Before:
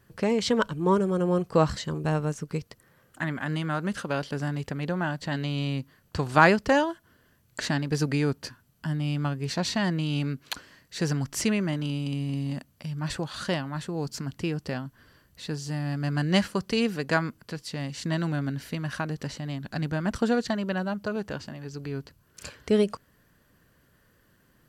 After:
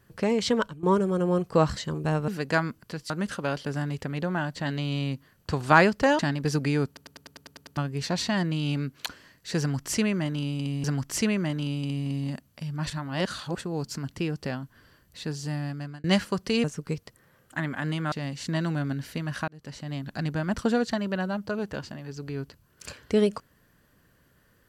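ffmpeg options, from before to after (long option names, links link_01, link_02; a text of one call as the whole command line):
ffmpeg -i in.wav -filter_complex "[0:a]asplit=21[link_01][link_02][link_03][link_04][link_05][link_06][link_07][link_08][link_09][link_10][link_11][link_12][link_13][link_14][link_15][link_16][link_17][link_18][link_19][link_20][link_21];[link_01]atrim=end=0.83,asetpts=PTS-STARTPTS,afade=type=out:start_time=0.54:duration=0.29:silence=0.149624[link_22];[link_02]atrim=start=0.83:end=2.282,asetpts=PTS-STARTPTS,afade=type=in:duration=0.004:curve=hsin:silence=0.149624[link_23];[link_03]atrim=start=16.868:end=17.692[link_24];[link_04]atrim=start=3.758:end=6.852[link_25];[link_05]atrim=start=7.658:end=8.442[link_26];[link_06]atrim=start=8.338:end=8.442[link_27];[link_07]atrim=start=8.338:end=8.442[link_28];[link_08]atrim=start=8.338:end=8.442[link_29];[link_09]atrim=start=8.338:end=8.442[link_30];[link_10]atrim=start=8.338:end=8.442[link_31];[link_11]atrim=start=8.338:end=8.442[link_32];[link_12]atrim=start=8.338:end=8.442[link_33];[link_13]atrim=start=8.338:end=8.442[link_34];[link_14]atrim=start=9.238:end=12.312[link_35];[link_15]atrim=start=11.068:end=13.132[link_36];[link_16]atrim=start=13.128:end=13.842,asetpts=PTS-STARTPTS,areverse[link_37];[link_17]atrim=start=13.838:end=16.27,asetpts=PTS-STARTPTS,afade=type=out:start_time=1.942:duration=0.49[link_38];[link_18]atrim=start=16.27:end=16.872,asetpts=PTS-STARTPTS,afade=type=in:duration=0.004:curve=hsin[link_39];[link_19]atrim=start=2.278:end=3.762[link_40];[link_20]atrim=start=17.688:end=19.05,asetpts=PTS-STARTPTS,afade=type=out:start_time=1.358:duration=0.004:curve=hsin[link_41];[link_21]atrim=start=19.05,asetpts=PTS-STARTPTS,afade=type=in:duration=0.45[link_42];[link_22][link_23]concat=n=2:v=0:a=1[link_43];[link_43][link_24]acrossfade=duration=0.004:curve1=hsin:curve2=hsin[link_44];[link_44][link_25]acrossfade=duration=0.004:curve1=hsin:curve2=hsin[link_45];[link_45][link_26]acrossfade=duration=0.004:curve1=hsin:curve2=hsin[link_46];[link_46][link_27]acrossfade=duration=0.004:curve1=hsin:curve2=hsin[link_47];[link_47][link_28]acrossfade=duration=0.004:curve1=hsin:curve2=hsin[link_48];[link_48][link_29]acrossfade=duration=0.004:curve1=hsin:curve2=hsin[link_49];[link_49][link_30]acrossfade=duration=0.004:curve1=hsin:curve2=hsin[link_50];[link_50][link_31]acrossfade=duration=0.004:curve1=hsin:curve2=hsin[link_51];[link_51][link_32]acrossfade=duration=0.004:curve1=hsin:curve2=hsin[link_52];[link_52][link_33]acrossfade=duration=0.004:curve1=hsin:curve2=hsin[link_53];[link_53][link_34]acrossfade=duration=0.004:curve1=hsin:curve2=hsin[link_54];[link_54][link_35]acrossfade=duration=0.004:curve1=hsin:curve2=hsin[link_55];[link_55][link_36]acrossfade=duration=0.004:curve1=hsin:curve2=hsin[link_56];[link_56][link_37]acrossfade=duration=0.004:curve1=hsin:curve2=hsin[link_57];[link_38][link_39]concat=n=2:v=0:a=1[link_58];[link_57][link_58]acrossfade=duration=0.004:curve1=hsin:curve2=hsin[link_59];[link_59][link_40]acrossfade=duration=0.004:curve1=hsin:curve2=hsin[link_60];[link_41][link_42]concat=n=2:v=0:a=1[link_61];[link_60][link_61]acrossfade=duration=0.004:curve1=hsin:curve2=hsin" out.wav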